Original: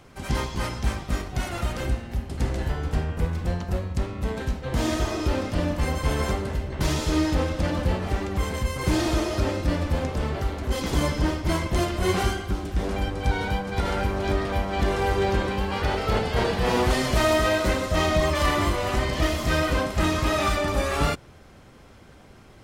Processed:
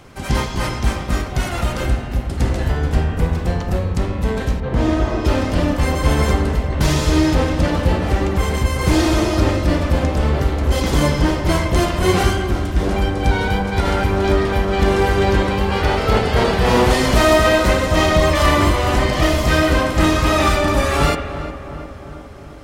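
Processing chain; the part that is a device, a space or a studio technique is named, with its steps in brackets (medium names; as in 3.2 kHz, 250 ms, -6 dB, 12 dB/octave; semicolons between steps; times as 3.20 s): dub delay into a spring reverb (filtered feedback delay 356 ms, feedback 65%, low-pass 2 kHz, level -11.5 dB; spring tank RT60 1.1 s, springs 41/50/54 ms, chirp 60 ms, DRR 9 dB); 4.60–5.25 s: low-pass 1.5 kHz 6 dB/octave; trim +7 dB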